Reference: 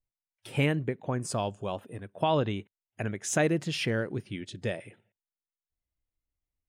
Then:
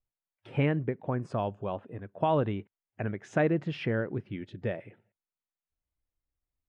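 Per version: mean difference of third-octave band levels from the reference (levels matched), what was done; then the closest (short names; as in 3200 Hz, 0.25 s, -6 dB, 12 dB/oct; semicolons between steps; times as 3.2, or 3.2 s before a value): 4.0 dB: LPF 1900 Hz 12 dB/oct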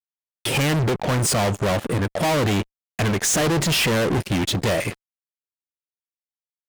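12.0 dB: fuzz box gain 46 dB, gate -54 dBFS; gain -5.5 dB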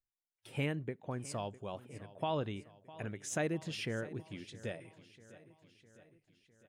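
2.5 dB: feedback echo 0.655 s, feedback 58%, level -18 dB; gain -9 dB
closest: third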